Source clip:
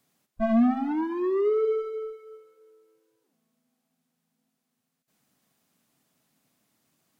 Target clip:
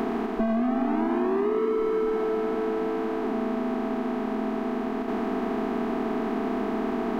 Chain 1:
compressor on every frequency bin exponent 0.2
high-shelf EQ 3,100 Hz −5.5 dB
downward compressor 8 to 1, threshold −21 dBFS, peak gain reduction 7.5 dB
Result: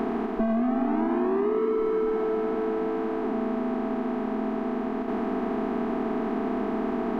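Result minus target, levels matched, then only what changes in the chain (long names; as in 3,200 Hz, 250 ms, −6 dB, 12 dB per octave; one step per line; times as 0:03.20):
8,000 Hz band −7.0 dB
change: high-shelf EQ 3,100 Hz +3 dB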